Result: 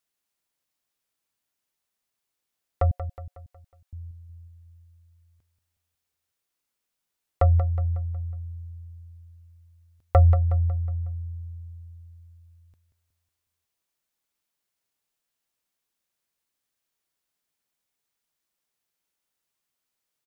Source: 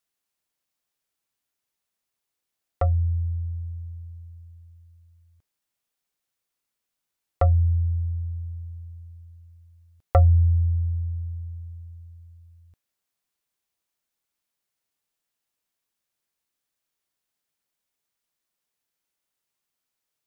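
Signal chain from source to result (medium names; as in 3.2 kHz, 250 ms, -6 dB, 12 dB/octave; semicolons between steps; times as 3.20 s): 2.91–3.93 s: steep high-pass 550 Hz; feedback delay 183 ms, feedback 47%, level -11 dB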